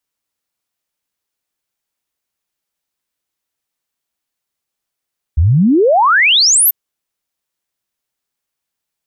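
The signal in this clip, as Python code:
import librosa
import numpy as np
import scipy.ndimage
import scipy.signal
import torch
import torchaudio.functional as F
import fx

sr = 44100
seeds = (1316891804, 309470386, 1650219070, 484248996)

y = fx.ess(sr, length_s=1.34, from_hz=70.0, to_hz=14000.0, level_db=-7.0)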